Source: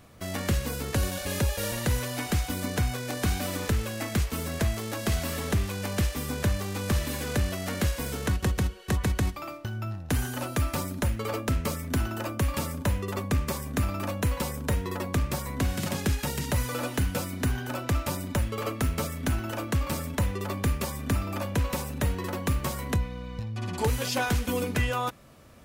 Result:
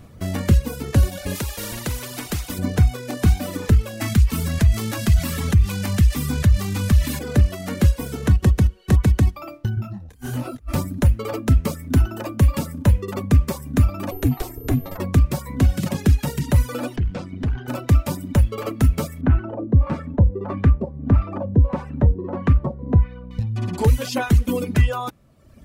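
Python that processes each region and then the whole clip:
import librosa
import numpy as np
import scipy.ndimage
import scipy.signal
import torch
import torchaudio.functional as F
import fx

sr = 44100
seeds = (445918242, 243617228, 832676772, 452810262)

y = fx.chain(x, sr, fx.notch(hz=760.0, q=7.8),
    fx.spectral_comp(ratio=2.0), at=(1.35, 2.59))
y = fx.chain(y, sr, fx.peak_eq(hz=460.0, db=-9.5, octaves=2.0),
    fx.env_flatten(amount_pct=50), at=(4.01, 7.19))
y = fx.chain(y, sr, fx.over_compress(threshold_db=-33.0, ratio=-0.5),
    fx.detune_double(cents=43), at=(9.75, 10.73))
y = fx.ring_mod(y, sr, carrier_hz=190.0, at=(14.1, 14.97), fade=0.02)
y = fx.dmg_tone(y, sr, hz=13000.0, level_db=-40.0, at=(14.1, 14.97), fade=0.02)
y = fx.chain(y, sr, fx.lowpass(hz=4100.0, slope=12),
    fx.tube_stage(drive_db=28.0, bias=0.6), at=(16.96, 17.68))
y = fx.chain(y, sr, fx.high_shelf(hz=2900.0, db=9.5),
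    fx.filter_lfo_lowpass(shape='sine', hz=1.6, low_hz=470.0, high_hz=1600.0, q=1.1), at=(19.21, 23.31))
y = fx.dereverb_blind(y, sr, rt60_s=1.1)
y = fx.low_shelf(y, sr, hz=380.0, db=11.5)
y = F.gain(torch.from_numpy(y), 1.5).numpy()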